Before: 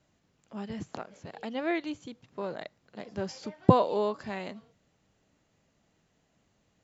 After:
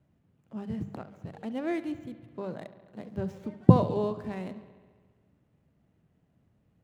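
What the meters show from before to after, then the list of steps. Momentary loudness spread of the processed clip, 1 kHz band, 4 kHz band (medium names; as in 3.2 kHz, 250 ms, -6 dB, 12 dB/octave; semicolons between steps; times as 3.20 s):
22 LU, -4.5 dB, no reading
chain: median filter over 9 samples; peaking EQ 110 Hz +14.5 dB 2.9 oct; hum notches 50/100/150/200 Hz; on a send: bucket-brigade echo 69 ms, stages 2048, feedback 74%, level -16 dB; on the sum: trim -6 dB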